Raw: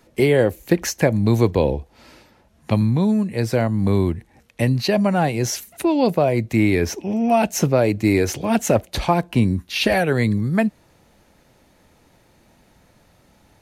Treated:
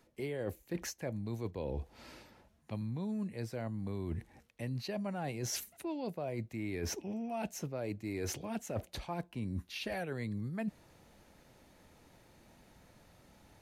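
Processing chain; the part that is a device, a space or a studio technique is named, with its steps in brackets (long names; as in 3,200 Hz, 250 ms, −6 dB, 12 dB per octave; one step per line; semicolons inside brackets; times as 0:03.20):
compression on the reversed sound (reversed playback; downward compressor 12 to 1, threshold −29 dBFS, peak gain reduction 19 dB; reversed playback)
level −6 dB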